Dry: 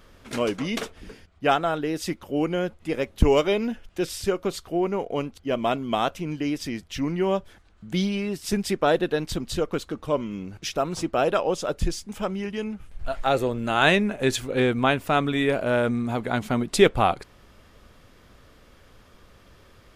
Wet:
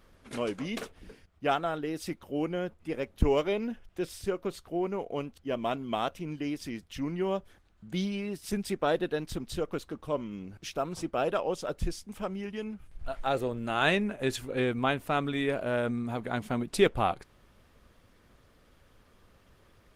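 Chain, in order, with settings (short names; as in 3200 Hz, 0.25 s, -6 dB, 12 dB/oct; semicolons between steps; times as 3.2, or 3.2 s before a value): 2.49–4.75 high shelf 3100 Hz -3 dB; gain -6.5 dB; Opus 24 kbps 48000 Hz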